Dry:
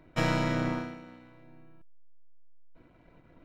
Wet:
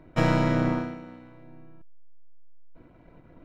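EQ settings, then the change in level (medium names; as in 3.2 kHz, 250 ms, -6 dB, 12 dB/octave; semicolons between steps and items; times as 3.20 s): peaking EQ 3.3 kHz -5 dB 2.7 oct; treble shelf 7.5 kHz -10 dB; +6.0 dB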